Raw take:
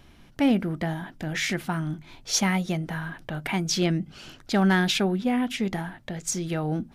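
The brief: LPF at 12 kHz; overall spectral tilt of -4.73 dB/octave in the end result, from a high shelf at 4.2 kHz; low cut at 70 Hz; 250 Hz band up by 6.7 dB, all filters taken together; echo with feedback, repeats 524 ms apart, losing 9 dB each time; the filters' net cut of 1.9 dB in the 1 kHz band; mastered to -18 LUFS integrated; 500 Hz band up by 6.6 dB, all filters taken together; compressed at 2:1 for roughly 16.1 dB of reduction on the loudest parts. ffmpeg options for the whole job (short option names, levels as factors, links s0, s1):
-af "highpass=70,lowpass=12000,equalizer=f=250:t=o:g=7.5,equalizer=f=500:t=o:g=7.5,equalizer=f=1000:t=o:g=-7.5,highshelf=f=4200:g=4,acompressor=threshold=0.01:ratio=2,aecho=1:1:524|1048|1572|2096:0.355|0.124|0.0435|0.0152,volume=5.96"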